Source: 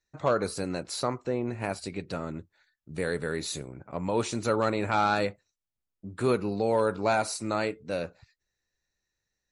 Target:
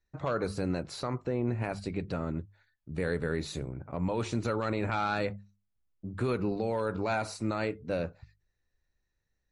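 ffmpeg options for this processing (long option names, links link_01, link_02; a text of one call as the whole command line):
ffmpeg -i in.wav -filter_complex "[0:a]lowpass=frequency=2400:poles=1,bandreject=frequency=50:width_type=h:width=6,bandreject=frequency=100:width_type=h:width=6,bandreject=frequency=150:width_type=h:width=6,bandreject=frequency=200:width_type=h:width=6,acrossover=split=1500[link_01][link_02];[link_01]alimiter=limit=-23.5dB:level=0:latency=1:release=57[link_03];[link_03][link_02]amix=inputs=2:normalize=0,lowshelf=frequency=130:gain=11" out.wav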